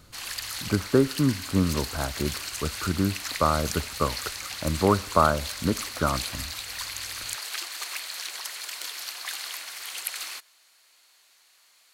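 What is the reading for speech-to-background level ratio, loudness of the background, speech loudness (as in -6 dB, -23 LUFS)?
6.5 dB, -33.0 LUFS, -26.5 LUFS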